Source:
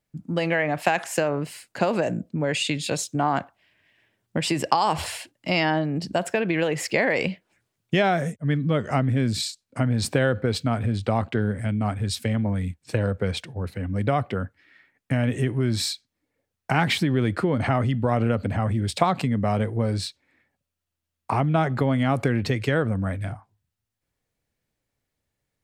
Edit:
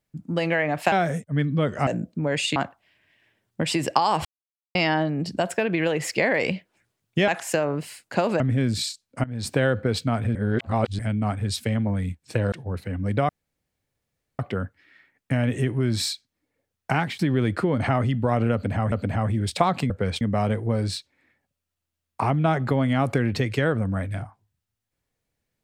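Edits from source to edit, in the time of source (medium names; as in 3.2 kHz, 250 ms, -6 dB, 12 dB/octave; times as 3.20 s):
0.92–2.04 s: swap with 8.04–8.99 s
2.73–3.32 s: delete
5.01–5.51 s: mute
9.83–10.19 s: fade in, from -18.5 dB
10.94–11.58 s: reverse
13.11–13.42 s: move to 19.31 s
14.19 s: insert room tone 1.10 s
16.72–16.99 s: fade out, to -21.5 dB
18.33–18.72 s: loop, 2 plays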